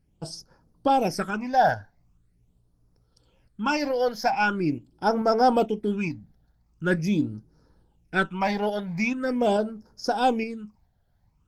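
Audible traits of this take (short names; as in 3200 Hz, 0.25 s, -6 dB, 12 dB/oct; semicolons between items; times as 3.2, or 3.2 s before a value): phasing stages 8, 0.43 Hz, lowest notch 330–2900 Hz; tremolo saw up 2.3 Hz, depth 35%; Opus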